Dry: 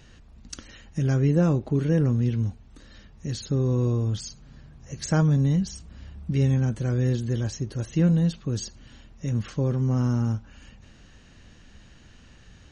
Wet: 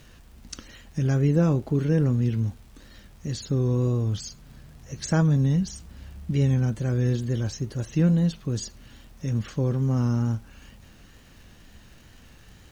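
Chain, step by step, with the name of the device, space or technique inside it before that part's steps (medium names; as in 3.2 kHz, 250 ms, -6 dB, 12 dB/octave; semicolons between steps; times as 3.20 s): vinyl LP (wow and flutter; crackle; pink noise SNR 35 dB)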